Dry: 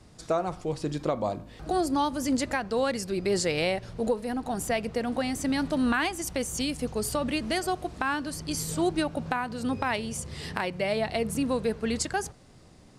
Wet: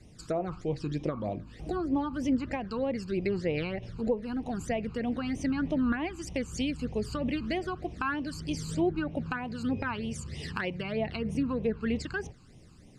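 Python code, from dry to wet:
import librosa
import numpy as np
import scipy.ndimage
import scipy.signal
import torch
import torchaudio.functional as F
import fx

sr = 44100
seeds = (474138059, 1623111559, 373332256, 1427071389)

y = fx.env_lowpass_down(x, sr, base_hz=1600.0, full_db=-22.0)
y = fx.phaser_stages(y, sr, stages=12, low_hz=590.0, high_hz=1500.0, hz=3.2, feedback_pct=20)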